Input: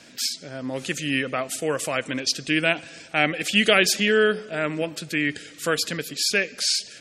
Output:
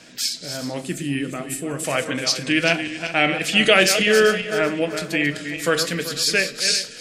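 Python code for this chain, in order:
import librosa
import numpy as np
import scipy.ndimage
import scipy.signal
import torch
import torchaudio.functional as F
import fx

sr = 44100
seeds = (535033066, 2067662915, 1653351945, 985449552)

y = fx.reverse_delay_fb(x, sr, ms=192, feedback_pct=54, wet_db=-8.5)
y = fx.spec_box(y, sr, start_s=0.81, length_s=1.03, low_hz=430.0, high_hz=7200.0, gain_db=-9)
y = fx.room_shoebox(y, sr, seeds[0], volume_m3=160.0, walls='furnished', distance_m=0.58)
y = y * 10.0 ** (2.0 / 20.0)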